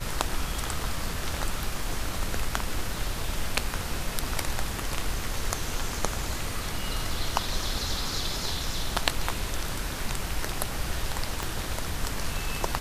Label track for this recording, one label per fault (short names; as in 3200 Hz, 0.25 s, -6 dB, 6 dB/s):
11.430000	11.430000	pop